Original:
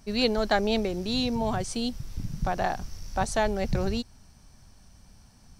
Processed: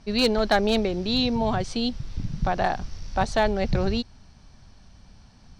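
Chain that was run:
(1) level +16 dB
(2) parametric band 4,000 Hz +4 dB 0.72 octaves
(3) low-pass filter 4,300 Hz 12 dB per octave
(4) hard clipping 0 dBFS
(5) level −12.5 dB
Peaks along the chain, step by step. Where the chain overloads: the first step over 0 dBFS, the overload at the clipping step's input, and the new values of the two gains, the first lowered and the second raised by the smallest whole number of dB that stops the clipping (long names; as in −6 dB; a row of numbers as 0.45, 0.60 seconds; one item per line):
+5.0, +6.5, +5.5, 0.0, −12.5 dBFS
step 1, 5.5 dB
step 1 +10 dB, step 5 −6.5 dB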